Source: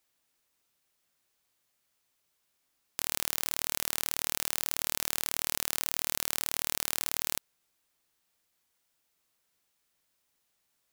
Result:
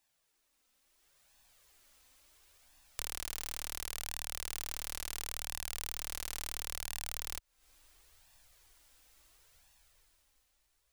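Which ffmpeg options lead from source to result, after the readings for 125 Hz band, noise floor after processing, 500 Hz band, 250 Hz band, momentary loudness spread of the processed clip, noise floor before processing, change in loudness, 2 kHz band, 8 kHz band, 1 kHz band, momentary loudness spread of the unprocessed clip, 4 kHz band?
−1.5 dB, −77 dBFS, −8.5 dB, −11.0 dB, 1 LU, −77 dBFS, −8.5 dB, −7.5 dB, −8.0 dB, −7.5 dB, 2 LU, −7.5 dB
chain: -af "equalizer=frequency=15000:width=3.6:gain=-11,flanger=delay=1.1:depth=2.8:regen=-18:speed=0.72:shape=sinusoidal,acompressor=threshold=-49dB:ratio=12,asubboost=boost=12:cutoff=52,dynaudnorm=framelen=210:gausssize=11:maxgain=13dB,volume=3dB"

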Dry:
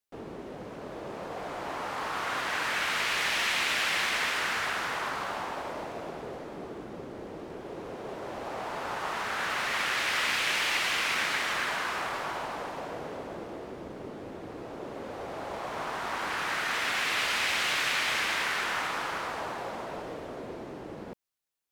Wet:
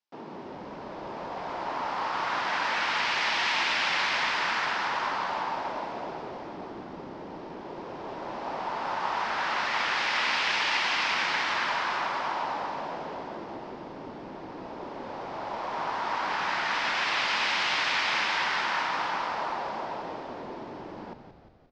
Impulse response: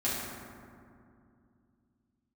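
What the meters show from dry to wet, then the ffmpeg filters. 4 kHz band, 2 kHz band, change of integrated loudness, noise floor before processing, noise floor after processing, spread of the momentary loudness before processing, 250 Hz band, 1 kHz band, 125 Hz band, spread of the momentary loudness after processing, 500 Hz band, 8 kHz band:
+1.0 dB, +1.0 dB, +2.0 dB, −43 dBFS, −42 dBFS, 16 LU, +0.5 dB, +4.5 dB, −1.5 dB, 16 LU, +0.5 dB, −6.0 dB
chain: -filter_complex "[0:a]highpass=frequency=150:width=0.5412,highpass=frequency=150:width=1.3066,equalizer=frequency=460:width_type=q:width=4:gain=-4,equalizer=frequency=930:width_type=q:width=4:gain=8,equalizer=frequency=5100:width_type=q:width=4:gain=4,lowpass=frequency=5500:width=0.5412,lowpass=frequency=5500:width=1.3066,asplit=8[link_01][link_02][link_03][link_04][link_05][link_06][link_07][link_08];[link_02]adelay=176,afreqshift=-68,volume=-9dB[link_09];[link_03]adelay=352,afreqshift=-136,volume=-13.9dB[link_10];[link_04]adelay=528,afreqshift=-204,volume=-18.8dB[link_11];[link_05]adelay=704,afreqshift=-272,volume=-23.6dB[link_12];[link_06]adelay=880,afreqshift=-340,volume=-28.5dB[link_13];[link_07]adelay=1056,afreqshift=-408,volume=-33.4dB[link_14];[link_08]adelay=1232,afreqshift=-476,volume=-38.3dB[link_15];[link_01][link_09][link_10][link_11][link_12][link_13][link_14][link_15]amix=inputs=8:normalize=0"

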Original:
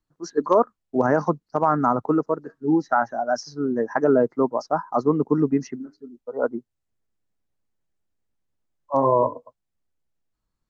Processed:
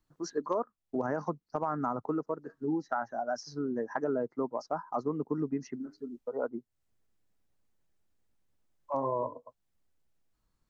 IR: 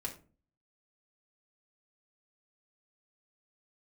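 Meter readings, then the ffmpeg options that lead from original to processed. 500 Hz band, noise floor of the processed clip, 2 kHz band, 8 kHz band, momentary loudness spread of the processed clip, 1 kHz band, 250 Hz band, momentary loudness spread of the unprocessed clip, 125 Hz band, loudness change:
−12.0 dB, −81 dBFS, −11.5 dB, can't be measured, 7 LU, −12.0 dB, −11.5 dB, 8 LU, −12.0 dB, −12.0 dB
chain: -af "acompressor=threshold=-39dB:ratio=2.5,volume=2.5dB"

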